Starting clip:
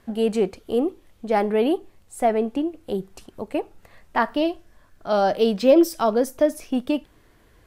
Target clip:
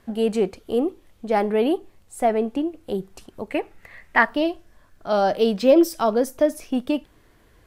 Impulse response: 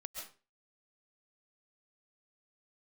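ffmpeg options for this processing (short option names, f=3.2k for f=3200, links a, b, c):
-filter_complex "[0:a]asettb=1/sr,asplit=3[a][b][c];[a]atrim=end=3.504[d];[b]atrim=start=3.5:end=4.25,asetpts=PTS-STARTPTS,afade=t=in:d=0.004:c=qsin,afade=t=out:st=0.746:d=0.004:c=qsin,equalizer=f=2k:w=2:g=13[e];[c]atrim=start=4.246[f];[d][e]acrossfade=d=0.004:c1=hsin:c2=qsin[g];[g][f]acrossfade=d=0.004:c1=qsin:c2=hsin"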